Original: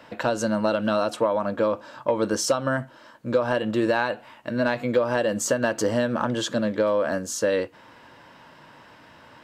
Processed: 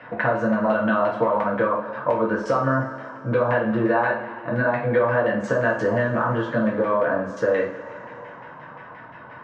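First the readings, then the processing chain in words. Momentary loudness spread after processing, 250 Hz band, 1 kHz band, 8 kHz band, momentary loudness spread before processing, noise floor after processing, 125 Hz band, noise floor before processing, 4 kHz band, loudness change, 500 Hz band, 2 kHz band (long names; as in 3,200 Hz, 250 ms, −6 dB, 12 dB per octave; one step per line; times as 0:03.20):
18 LU, +2.0 dB, +5.0 dB, below −20 dB, 5 LU, −42 dBFS, +5.5 dB, −51 dBFS, below −10 dB, +2.0 dB, +2.0 dB, +5.0 dB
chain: auto-filter low-pass saw down 5.7 Hz 840–2,100 Hz
downward compressor 2 to 1, threshold −25 dBFS, peak gain reduction 7 dB
coupled-rooms reverb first 0.39 s, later 3.1 s, from −19 dB, DRR −3.5 dB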